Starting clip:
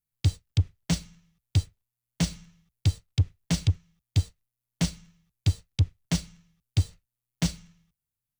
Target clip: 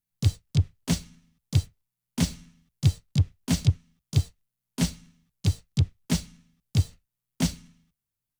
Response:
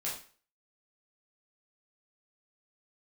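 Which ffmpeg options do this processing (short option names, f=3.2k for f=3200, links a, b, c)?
-filter_complex "[0:a]asplit=3[a][b][c];[b]asetrate=58866,aresample=44100,atempo=0.749154,volume=-10dB[d];[c]asetrate=66075,aresample=44100,atempo=0.66742,volume=-7dB[e];[a][d][e]amix=inputs=3:normalize=0"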